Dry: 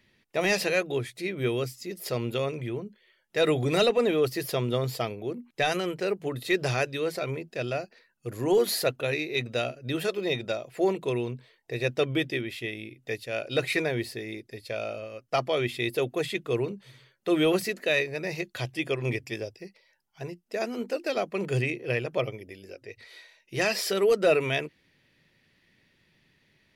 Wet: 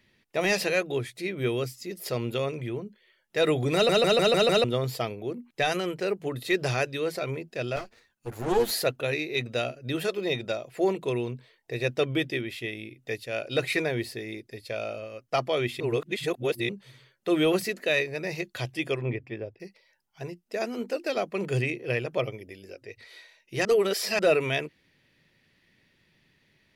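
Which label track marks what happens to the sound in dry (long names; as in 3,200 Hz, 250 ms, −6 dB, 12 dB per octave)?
3.740000	3.740000	stutter in place 0.15 s, 6 plays
7.760000	8.710000	lower of the sound and its delayed copy delay 8.7 ms
15.800000	16.690000	reverse
19.010000	19.600000	high-frequency loss of the air 490 metres
23.650000	24.190000	reverse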